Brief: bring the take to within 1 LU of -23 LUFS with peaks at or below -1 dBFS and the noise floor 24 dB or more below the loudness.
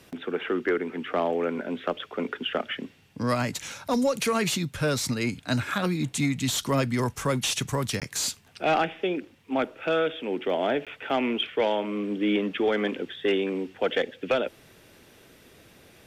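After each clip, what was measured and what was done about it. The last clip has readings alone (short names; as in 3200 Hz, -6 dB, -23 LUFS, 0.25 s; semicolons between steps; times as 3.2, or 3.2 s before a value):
dropouts 2; longest dropout 17 ms; loudness -27.5 LUFS; peak -15.5 dBFS; loudness target -23.0 LUFS
-> interpolate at 8/10.85, 17 ms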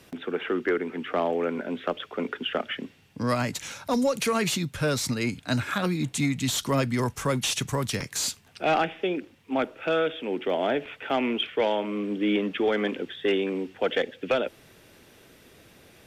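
dropouts 0; loudness -27.5 LUFS; peak -15.5 dBFS; loudness target -23.0 LUFS
-> gain +4.5 dB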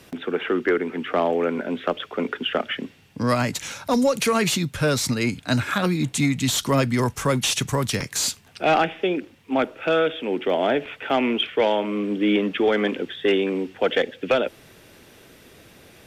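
loudness -23.0 LUFS; peak -11.0 dBFS; noise floor -51 dBFS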